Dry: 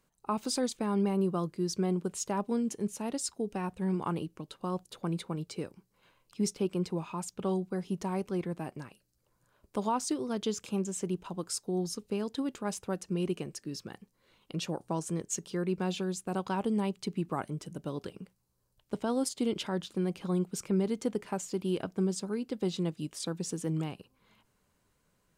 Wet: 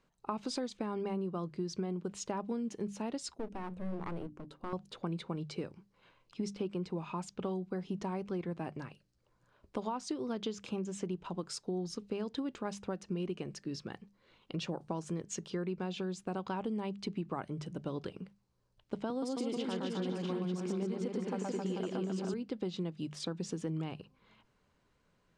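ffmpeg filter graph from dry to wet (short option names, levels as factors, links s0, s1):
-filter_complex "[0:a]asettb=1/sr,asplit=3[s0][s1][s2];[s0]atrim=end=3.344[s3];[s1]atrim=start=3.34:end=4.73,asetpts=PTS-STARTPTS,afade=t=in:d=0.004:c=qsin,afade=t=out:st=1.386:d=0.004:c=qsin,equalizer=f=3100:w=0.45:g=-10.5,bandreject=f=60:t=h:w=6,bandreject=f=120:t=h:w=6,bandreject=f=180:t=h:w=6,bandreject=f=240:t=h:w=6,bandreject=f=300:t=h:w=6,aeval=exprs='clip(val(0),-1,0.00447)':c=same[s4];[s2]atrim=start=4.726[s5];[s3][s4]acrossfade=d=0.004:c1=hsin:c2=qsin[s6];[s6][s5]acrossfade=d=0.004:c1=qsin:c2=hsin,asettb=1/sr,asplit=3[s7][s8][s9];[s7]atrim=end=19.104[s10];[s8]atrim=start=19.1:end=22.34,asetpts=PTS-STARTPTS,afade=t=in:d=0.004:c=qsin,afade=t=out:st=3.236:d=0.004:c=qsin,highpass=f=140:w=0.5412,highpass=f=140:w=1.3066,aecho=1:1:120|264|436.8|644.2|893:0.794|0.631|0.501|0.398|0.316,atrim=end_sample=142884[s11];[s9]atrim=start=22.336[s12];[s10][s11]acrossfade=d=0.004:c1=hsin:c2=qsin[s13];[s13][s12]acrossfade=d=0.004:c1=qsin:c2=hsin,lowpass=4700,bandreject=f=50:t=h:w=6,bandreject=f=100:t=h:w=6,bandreject=f=150:t=h:w=6,bandreject=f=200:t=h:w=6,acompressor=threshold=0.02:ratio=6,volume=1.12"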